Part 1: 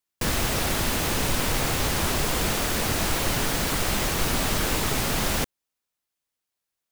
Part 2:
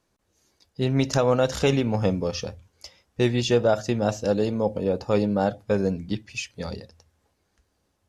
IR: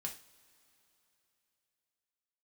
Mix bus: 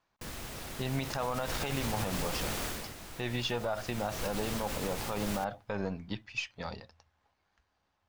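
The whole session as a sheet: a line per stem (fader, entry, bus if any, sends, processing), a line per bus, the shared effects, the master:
0:00.94 −18 dB → 0:01.66 −10.5 dB → 0:02.67 −10.5 dB → 0:02.95 −22.5 dB → 0:03.78 −22.5 dB → 0:04.23 −13 dB, 0.00 s, send −17.5 dB, no processing
−0.5 dB, 0.00 s, no send, gain on one half-wave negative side −3 dB; low-pass filter 3,900 Hz 12 dB per octave; low shelf with overshoot 610 Hz −7.5 dB, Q 1.5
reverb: on, pre-delay 3 ms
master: brickwall limiter −22.5 dBFS, peak gain reduction 11.5 dB

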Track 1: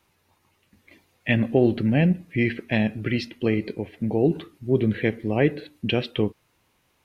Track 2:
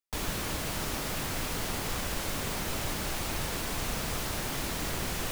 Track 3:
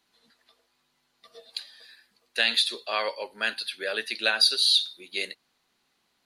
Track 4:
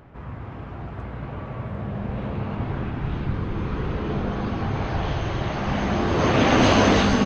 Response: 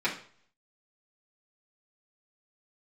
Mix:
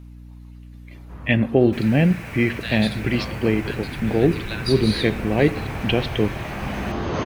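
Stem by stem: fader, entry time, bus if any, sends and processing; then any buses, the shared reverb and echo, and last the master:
+2.5 dB, 0.00 s, no send, no echo send, no processing
−15.0 dB, 1.60 s, send −9.5 dB, echo send −11.5 dB, flat-topped bell 2,000 Hz +13 dB 1.2 octaves
−9.0 dB, 0.25 s, no send, no echo send, no processing
−4.0 dB, 0.95 s, no send, no echo send, no processing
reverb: on, RT60 0.50 s, pre-delay 3 ms
echo: single-tap delay 133 ms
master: mains hum 60 Hz, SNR 19 dB

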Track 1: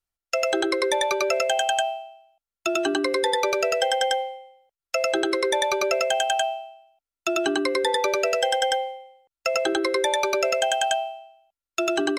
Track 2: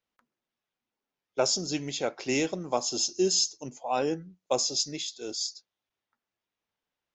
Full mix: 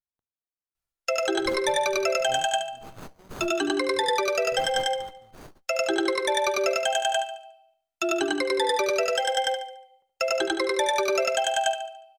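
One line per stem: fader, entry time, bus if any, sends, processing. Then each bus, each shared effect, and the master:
+2.0 dB, 0.75 s, no send, echo send −9.5 dB, flanger 0.92 Hz, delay 1 ms, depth 4.5 ms, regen −49%
−8.5 dB, 0.00 s, no send, no echo send, Chebyshev band-stop filter 110–4,000 Hz, order 3; windowed peak hold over 17 samples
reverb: not used
echo: repeating echo 72 ms, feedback 39%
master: no processing

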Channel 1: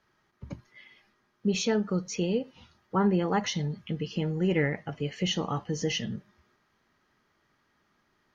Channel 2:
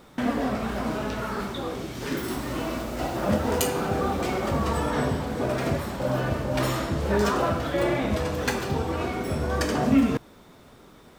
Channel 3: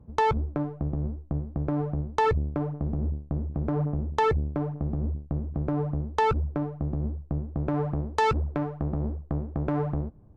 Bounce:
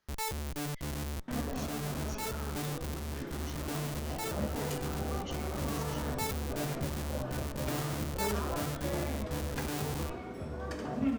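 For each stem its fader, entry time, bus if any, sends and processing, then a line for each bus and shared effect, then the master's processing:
−10.0 dB, 0.00 s, bus A, no send, downward compressor, threshold −33 dBFS, peak gain reduction 12.5 dB
−10.5 dB, 1.10 s, no bus, no send, low-pass filter 1,500 Hz 6 dB per octave; harmonic generator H 3 −23 dB, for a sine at −10 dBFS
−4.5 dB, 0.00 s, bus A, no send, hum removal 131.4 Hz, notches 5; comparator with hysteresis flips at −38 dBFS
bus A: 0.0 dB, brickwall limiter −35 dBFS, peak gain reduction 10 dB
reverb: not used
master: high-shelf EQ 4,600 Hz +10.5 dB

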